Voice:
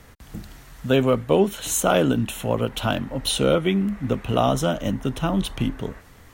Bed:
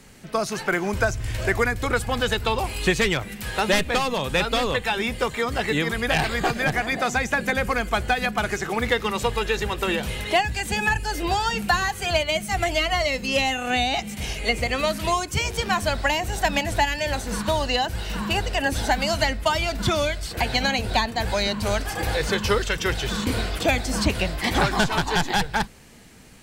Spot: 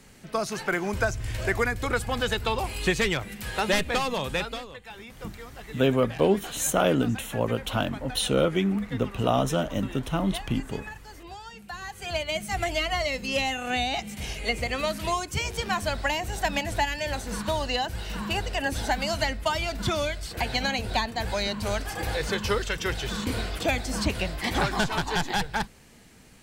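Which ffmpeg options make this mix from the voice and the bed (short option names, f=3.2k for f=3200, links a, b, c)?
-filter_complex "[0:a]adelay=4900,volume=-3.5dB[a];[1:a]volume=11dB,afade=t=out:st=4.24:d=0.42:silence=0.16788,afade=t=in:st=11.7:d=0.73:silence=0.188365[b];[a][b]amix=inputs=2:normalize=0"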